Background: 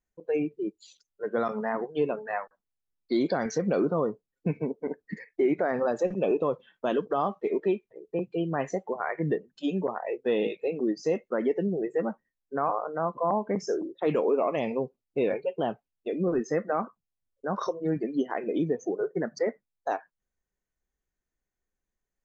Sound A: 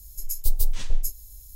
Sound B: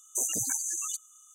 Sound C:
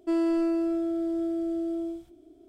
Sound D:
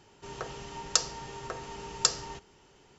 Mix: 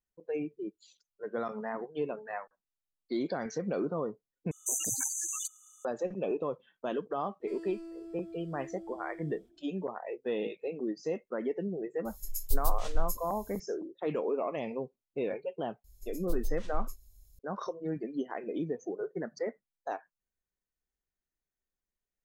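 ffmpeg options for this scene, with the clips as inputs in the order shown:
ffmpeg -i bed.wav -i cue0.wav -i cue1.wav -i cue2.wav -filter_complex "[1:a]asplit=2[link_01][link_02];[0:a]volume=-7dB[link_03];[3:a]acrossover=split=250|3000[link_04][link_05][link_06];[link_05]acompressor=threshold=-36dB:ratio=6:attack=3.2:release=140:knee=2.83:detection=peak[link_07];[link_04][link_07][link_06]amix=inputs=3:normalize=0[link_08];[link_02]aemphasis=mode=reproduction:type=cd[link_09];[link_03]asplit=2[link_10][link_11];[link_10]atrim=end=4.514[link_12];[2:a]atrim=end=1.34,asetpts=PTS-STARTPTS,volume=-2.5dB[link_13];[link_11]atrim=start=5.846[link_14];[link_08]atrim=end=2.48,asetpts=PTS-STARTPTS,volume=-12.5dB,afade=type=in:duration=0.004:curve=hsin,afade=type=out:start_time=2.476:duration=0.004:curve=hsin,adelay=7400[link_15];[link_01]atrim=end=1.55,asetpts=PTS-STARTPTS,volume=-6.5dB,afade=type=in:duration=0.004:curve=hsin,afade=type=out:start_time=1.546:duration=0.004:curve=hsin,adelay=12050[link_16];[link_09]atrim=end=1.55,asetpts=PTS-STARTPTS,volume=-12dB,afade=type=in:duration=0.004:curve=hsin,afade=type=out:start_time=1.546:duration=0.004:curve=hsin,adelay=15840[link_17];[link_12][link_13]acrossfade=duration=0.004:curve1=hsin:curve2=hsin[link_18];[link_18][link_14]acrossfade=duration=0.004:curve1=hsin:curve2=hsin[link_19];[link_19][link_15][link_16][link_17]amix=inputs=4:normalize=0" out.wav

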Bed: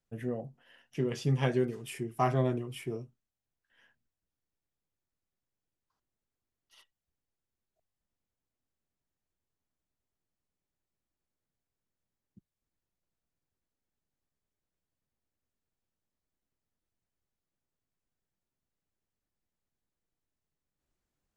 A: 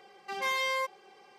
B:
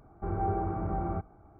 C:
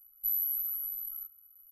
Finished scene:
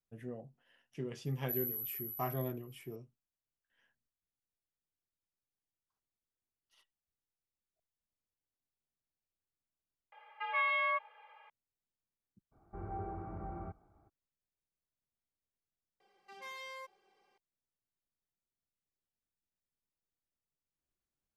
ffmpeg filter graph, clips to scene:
ffmpeg -i bed.wav -i cue0.wav -i cue1.wav -i cue2.wav -filter_complex "[1:a]asplit=2[link_01][link_02];[0:a]volume=-9.5dB[link_03];[link_01]highpass=frequency=600:width_type=q:width=0.5412,highpass=frequency=600:width_type=q:width=1.307,lowpass=frequency=2800:width_type=q:width=0.5176,lowpass=frequency=2800:width_type=q:width=0.7071,lowpass=frequency=2800:width_type=q:width=1.932,afreqshift=69[link_04];[2:a]highshelf=frequency=2100:gain=6[link_05];[link_03]asplit=2[link_06][link_07];[link_06]atrim=end=10.124[link_08];[link_04]atrim=end=1.38,asetpts=PTS-STARTPTS,volume=-0.5dB[link_09];[link_07]atrim=start=11.496[link_10];[3:a]atrim=end=1.71,asetpts=PTS-STARTPTS,volume=-8dB,afade=type=in:duration=0.004:curve=hsin,afade=type=out:start_time=1.706:duration=0.004:curve=hsin,adelay=1250[link_11];[link_05]atrim=end=1.59,asetpts=PTS-STARTPTS,volume=-12dB,afade=type=in:duration=0.02,afade=type=out:start_time=1.57:duration=0.02,adelay=12510[link_12];[link_02]atrim=end=1.38,asetpts=PTS-STARTPTS,volume=-16.5dB,afade=type=in:duration=0.004:curve=hsin,afade=type=out:start_time=1.376:duration=0.004:curve=hsin,adelay=16000[link_13];[link_08][link_09]acrossfade=duration=0.004:curve1=hsin:curve2=hsin[link_14];[link_14][link_10]acrossfade=duration=0.004:curve1=hsin:curve2=hsin[link_15];[link_15][link_11][link_12][link_13]amix=inputs=4:normalize=0" out.wav

